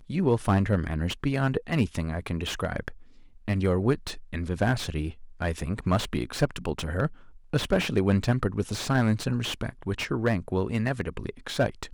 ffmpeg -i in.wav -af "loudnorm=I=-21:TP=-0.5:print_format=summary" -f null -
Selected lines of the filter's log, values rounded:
Input Integrated:    -28.2 LUFS
Input True Peak:      -9.1 dBTP
Input LRA:             2.3 LU
Input Threshold:     -38.4 LUFS